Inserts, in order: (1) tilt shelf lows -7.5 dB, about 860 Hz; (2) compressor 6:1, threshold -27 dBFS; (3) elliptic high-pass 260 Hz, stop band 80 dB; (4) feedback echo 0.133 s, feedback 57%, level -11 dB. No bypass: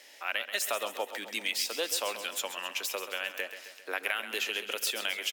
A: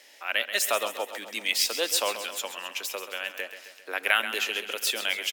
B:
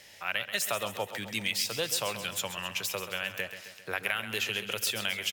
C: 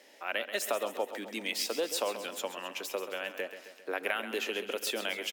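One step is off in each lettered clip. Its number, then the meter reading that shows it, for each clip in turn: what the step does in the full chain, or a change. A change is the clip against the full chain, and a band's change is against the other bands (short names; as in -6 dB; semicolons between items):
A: 2, mean gain reduction 2.5 dB; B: 3, 250 Hz band +5.0 dB; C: 1, 250 Hz band +9.5 dB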